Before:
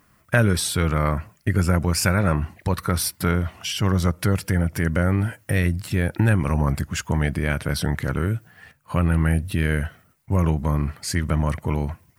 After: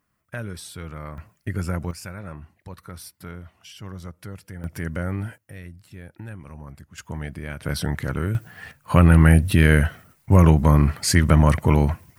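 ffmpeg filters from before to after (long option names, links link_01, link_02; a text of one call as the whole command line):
ffmpeg -i in.wav -af "asetnsamples=nb_out_samples=441:pad=0,asendcmd='1.18 volume volume -7dB;1.91 volume volume -16.5dB;4.64 volume volume -7dB;5.38 volume volume -19dB;6.98 volume volume -10dB;7.63 volume volume -2dB;8.35 volume volume 6.5dB',volume=-14.5dB" out.wav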